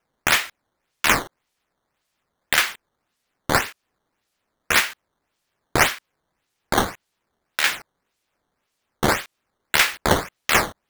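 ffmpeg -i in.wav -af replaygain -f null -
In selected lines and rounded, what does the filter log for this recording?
track_gain = +0.8 dB
track_peak = 0.541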